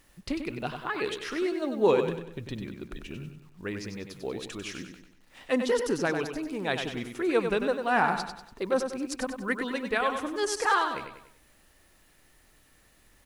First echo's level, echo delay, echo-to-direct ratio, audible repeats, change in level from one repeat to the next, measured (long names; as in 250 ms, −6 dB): −7.0 dB, 96 ms, −6.0 dB, 4, −7.5 dB